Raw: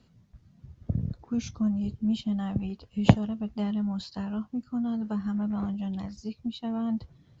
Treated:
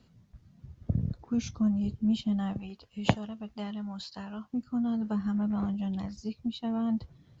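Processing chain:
0:02.53–0:04.54: low-shelf EQ 460 Hz −10 dB

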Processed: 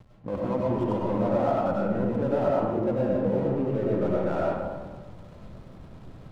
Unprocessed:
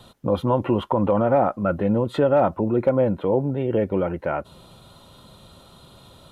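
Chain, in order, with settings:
low-pass filter 1,900 Hz 6 dB per octave
reversed playback
downward compressor 4 to 1, threshold −33 dBFS, peak gain reduction 15.5 dB
reversed playback
slack as between gear wheels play −40.5 dBFS
mains-hum notches 50/100/150 Hz
comb and all-pass reverb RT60 1.5 s, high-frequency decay 0.4×, pre-delay 55 ms, DRR −4.5 dB
level +3 dB

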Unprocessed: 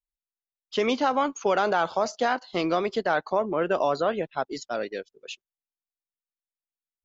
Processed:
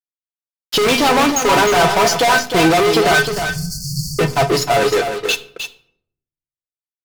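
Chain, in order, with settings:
low-shelf EQ 80 Hz +11.5 dB
tuned comb filter 140 Hz, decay 0.16 s, harmonics odd, mix 90%
hum removal 48.83 Hz, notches 4
fuzz pedal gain 47 dB, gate −54 dBFS
0:03.25–0:04.19: linear-phase brick-wall band-stop 180–4,300 Hz
single-tap delay 309 ms −8 dB
convolution reverb RT60 0.65 s, pre-delay 6 ms, DRR 11 dB
level +1.5 dB

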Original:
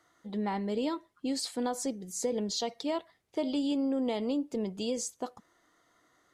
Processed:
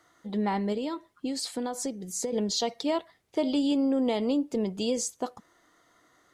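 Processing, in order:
0:00.72–0:02.33: downward compressor, threshold −33 dBFS, peak gain reduction 7 dB
level +4.5 dB

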